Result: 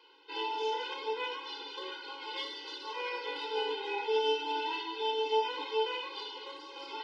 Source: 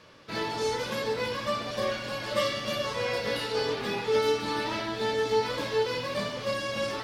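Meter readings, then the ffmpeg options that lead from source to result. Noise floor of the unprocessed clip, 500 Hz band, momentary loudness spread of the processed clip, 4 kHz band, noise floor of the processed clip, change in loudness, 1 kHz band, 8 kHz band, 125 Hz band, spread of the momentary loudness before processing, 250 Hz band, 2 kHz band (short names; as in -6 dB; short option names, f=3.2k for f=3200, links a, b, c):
-37 dBFS, -7.0 dB, 11 LU, -3.0 dB, -48 dBFS, -5.5 dB, -2.0 dB, under -15 dB, under -40 dB, 5 LU, -13.0 dB, -6.5 dB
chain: -af "highpass=f=270:w=0.5412,highpass=f=270:w=1.3066,equalizer=f=320:t=q:w=4:g=-8,equalizer=f=510:t=q:w=4:g=-9,equalizer=f=740:t=q:w=4:g=5,equalizer=f=1.3k:t=q:w=4:g=-4,equalizer=f=1.9k:t=q:w=4:g=-8,equalizer=f=3k:t=q:w=4:g=6,lowpass=f=4.4k:w=0.5412,lowpass=f=4.4k:w=1.3066,aeval=exprs='0.15*(cos(1*acos(clip(val(0)/0.15,-1,1)))-cos(1*PI/2))+0.00119*(cos(7*acos(clip(val(0)/0.15,-1,1)))-cos(7*PI/2))':c=same,afftfilt=real='re*eq(mod(floor(b*sr/1024/270),2),1)':imag='im*eq(mod(floor(b*sr/1024/270),2),1)':win_size=1024:overlap=0.75"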